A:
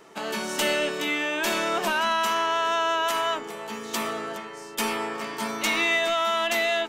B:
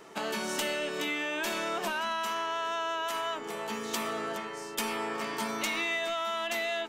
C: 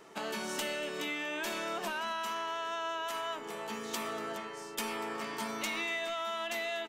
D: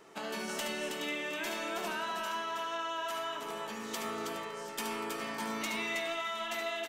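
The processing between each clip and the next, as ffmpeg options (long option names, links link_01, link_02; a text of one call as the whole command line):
ffmpeg -i in.wav -af "acompressor=threshold=-30dB:ratio=4" out.wav
ffmpeg -i in.wav -af "aecho=1:1:239:0.119,volume=-4dB" out.wav
ffmpeg -i in.wav -af "aecho=1:1:72|321|715:0.473|0.562|0.106,volume=-2dB" out.wav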